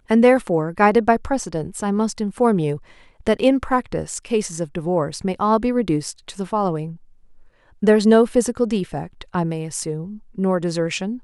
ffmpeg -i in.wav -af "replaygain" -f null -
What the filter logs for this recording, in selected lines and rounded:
track_gain = -1.6 dB
track_peak = 0.554